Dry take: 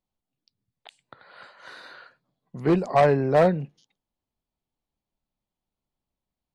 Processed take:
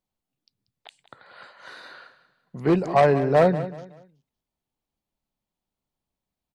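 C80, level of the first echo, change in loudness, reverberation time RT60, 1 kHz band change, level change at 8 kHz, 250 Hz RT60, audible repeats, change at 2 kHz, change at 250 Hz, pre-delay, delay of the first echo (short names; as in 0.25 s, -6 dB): none, -14.0 dB, +0.5 dB, none, +1.0 dB, n/a, none, 3, +1.0 dB, +1.0 dB, none, 0.187 s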